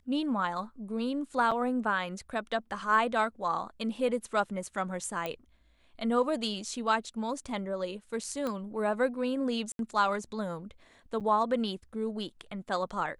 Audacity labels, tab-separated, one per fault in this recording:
1.510000	1.520000	drop-out 5.3 ms
5.260000	5.260000	click −20 dBFS
8.470000	8.470000	click −21 dBFS
9.720000	9.790000	drop-out 72 ms
11.200000	11.210000	drop-out 7.3 ms

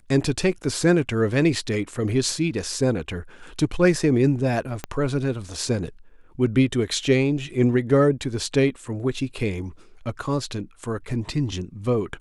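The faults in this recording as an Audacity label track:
4.840000	4.840000	click −13 dBFS

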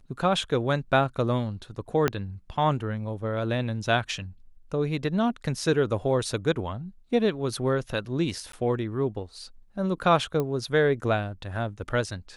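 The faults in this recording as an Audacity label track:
2.080000	2.080000	click −9 dBFS
8.520000	8.530000	drop-out 13 ms
10.400000	10.400000	click −16 dBFS

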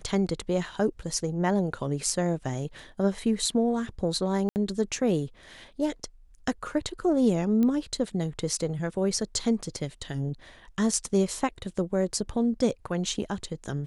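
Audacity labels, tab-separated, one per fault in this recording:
4.490000	4.560000	drop-out 69 ms
7.630000	7.630000	click −17 dBFS

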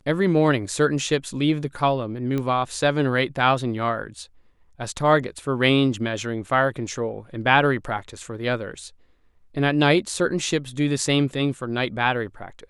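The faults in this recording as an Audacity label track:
2.380000	2.380000	click −15 dBFS

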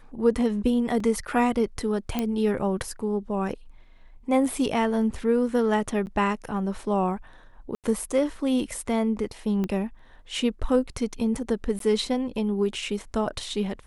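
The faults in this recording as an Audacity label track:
1.000000	1.000000	drop-out 3.5 ms
2.190000	2.190000	click −12 dBFS
6.060000	6.070000	drop-out 9.6 ms
7.750000	7.840000	drop-out 88 ms
9.640000	9.640000	click −17 dBFS
11.790000	11.800000	drop-out 13 ms

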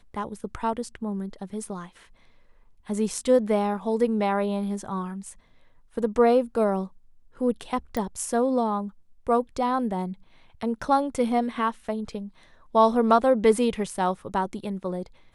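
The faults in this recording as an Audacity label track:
7.970000	7.970000	click −16 dBFS

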